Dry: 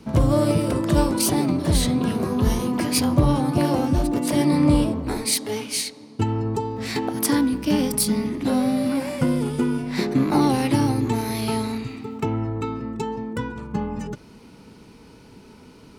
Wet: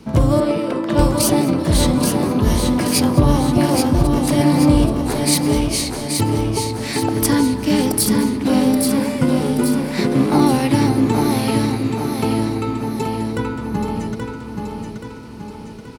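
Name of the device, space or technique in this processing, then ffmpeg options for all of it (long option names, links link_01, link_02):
ducked delay: -filter_complex "[0:a]asettb=1/sr,asplit=3[link_01][link_02][link_03];[link_01]atrim=end=0.404[link_04];[link_02]atrim=start=0.4:end=0.99,asetpts=PTS-STARTPTS,afade=type=in:duration=0.004:curve=qsin,afade=type=out:start_time=0.586:duration=0.004:curve=qsin,acrossover=split=200 4400:gain=0.0891 1 0.2[link_05][link_06][link_07];[link_05][link_06][link_07]amix=inputs=3:normalize=0[link_08];[link_03]atrim=start=0.986[link_09];[link_04][link_08]acrossfade=duration=0.004:curve1=hsin:curve2=qsin[link_10];[link_10][link_09]acrossfade=duration=0.004:curve1=qsin:curve2=hsin,asplit=3[link_11][link_12][link_13];[link_12]adelay=206,volume=-6.5dB[link_14];[link_13]apad=whole_len=713862[link_15];[link_14][link_15]sidechaincompress=threshold=-29dB:ratio=8:attack=16:release=1050[link_16];[link_11][link_16]amix=inputs=2:normalize=0,aecho=1:1:828|1656|2484|3312|4140|4968:0.562|0.281|0.141|0.0703|0.0351|0.0176,volume=3.5dB"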